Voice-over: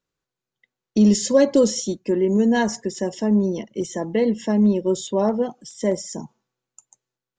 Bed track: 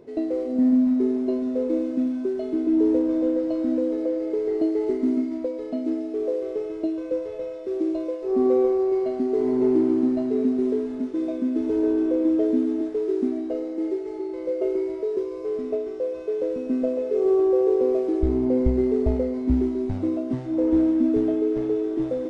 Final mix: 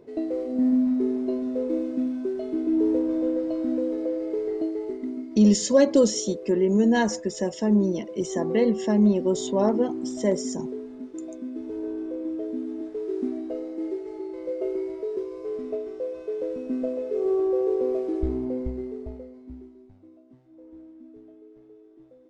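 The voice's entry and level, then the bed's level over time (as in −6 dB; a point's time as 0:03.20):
4.40 s, −2.0 dB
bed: 0:04.39 −2.5 dB
0:05.14 −10 dB
0:12.51 −10 dB
0:13.26 −4 dB
0:18.23 −4 dB
0:20.00 −27 dB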